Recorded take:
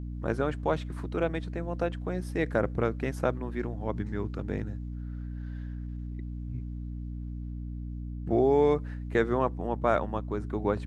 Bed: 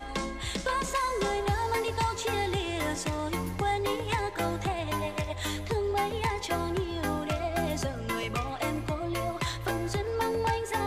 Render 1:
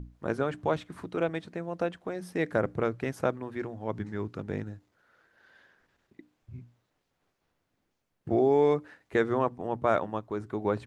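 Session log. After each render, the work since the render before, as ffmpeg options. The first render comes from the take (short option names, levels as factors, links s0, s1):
-af "bandreject=f=60:t=h:w=6,bandreject=f=120:t=h:w=6,bandreject=f=180:t=h:w=6,bandreject=f=240:t=h:w=6,bandreject=f=300:t=h:w=6"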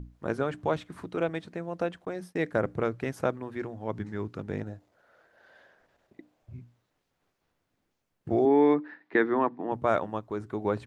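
-filter_complex "[0:a]asettb=1/sr,asplit=3[s0][s1][s2];[s0]atrim=end=2.054[s3];[s1]atrim=start=2.05:end=2.62,asetpts=PTS-STARTPTS,afade=t=in:d=0.004:c=qsin,afade=t=out:st=0.566:d=0.004:c=qsin,agate=range=0.0224:threshold=0.01:ratio=3:release=100:detection=peak[s4];[s2]atrim=start=2.616[s5];[s3][s4]acrossfade=d=0.004:c1=hsin:c2=qsin[s6];[s6][s5]acrossfade=d=0.004:c1=qsin:c2=hsin,asettb=1/sr,asplit=3[s7][s8][s9];[s7]atrim=end=4.604[s10];[s8]atrim=start=4.6:end=6.54,asetpts=PTS-STARTPTS,afade=t=in:d=0.004:c=qsin,afade=t=out:st=1.936:d=0.004:c=qsin,equalizer=f=630:w=1.7:g=11[s11];[s9]atrim=start=6.536[s12];[s10][s11]acrossfade=d=0.004:c1=hsin:c2=qsin[s13];[s13][s12]acrossfade=d=0.004:c1=qsin:c2=hsin,asettb=1/sr,asplit=3[s14][s15][s16];[s14]atrim=end=8.454[s17];[s15]atrim=start=8.45:end=9.72,asetpts=PTS-STARTPTS,afade=t=in:d=0.004:c=qsin,afade=t=out:st=1.266:d=0.004:c=qsin,highpass=f=170:w=0.5412,highpass=f=170:w=1.3066,equalizer=f=300:t=q:w=4:g=9,equalizer=f=530:t=q:w=4:g=-4,equalizer=f=930:t=q:w=4:g=4,equalizer=f=1800:t=q:w=4:g=7,equalizer=f=3000:t=q:w=4:g=-4,lowpass=f=4100:w=0.5412,lowpass=f=4100:w=1.3066[s18];[s16]atrim=start=9.716[s19];[s17][s18]acrossfade=d=0.004:c1=hsin:c2=qsin[s20];[s20][s19]acrossfade=d=0.004:c1=qsin:c2=hsin"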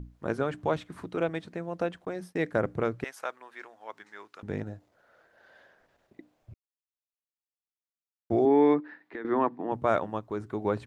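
-filter_complex "[0:a]asettb=1/sr,asplit=3[s0][s1][s2];[s0]atrim=end=3.044[s3];[s1]atrim=start=3.04:end=4.43,asetpts=PTS-STARTPTS,afade=t=in:d=0.004:c=qsin,afade=t=out:st=1.386:d=0.004:c=qsin,highpass=970[s4];[s2]atrim=start=4.426[s5];[s3][s4]acrossfade=d=0.004:c1=hsin:c2=qsin[s6];[s6][s5]acrossfade=d=0.004:c1=qsin:c2=hsin,asettb=1/sr,asplit=3[s7][s8][s9];[s7]atrim=end=8.804[s10];[s8]atrim=start=8.8:end=9.25,asetpts=PTS-STARTPTS,afade=t=in:d=0.004:c=qsin,afade=t=out:st=0.446:d=0.004:c=qsin,acompressor=threshold=0.00794:ratio=2.5:attack=3.2:release=140:knee=1:detection=peak[s11];[s9]atrim=start=9.246[s12];[s10][s11]acrossfade=d=0.004:c1=hsin:c2=qsin[s13];[s13][s12]acrossfade=d=0.004:c1=qsin:c2=hsin,asplit=3[s14][s15][s16];[s14]atrim=end=6.54,asetpts=PTS-STARTPTS,afade=t=out:st=6.536:d=0.004:c=hsin[s17];[s15]atrim=start=6.54:end=8.3,asetpts=PTS-STARTPTS,volume=0[s18];[s16]atrim=start=8.3,asetpts=PTS-STARTPTS,afade=t=in:d=0.004:c=hsin[s19];[s17][s18][s19]concat=n=3:v=0:a=1"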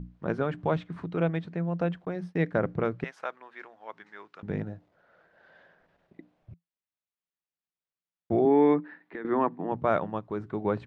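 -af "lowpass=3700,equalizer=f=170:t=o:w=0.27:g=11.5"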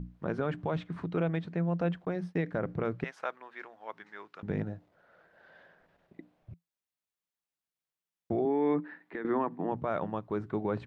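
-af "alimiter=limit=0.0944:level=0:latency=1:release=58"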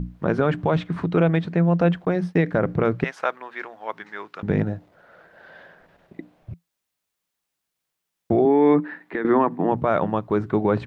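-af "volume=3.76"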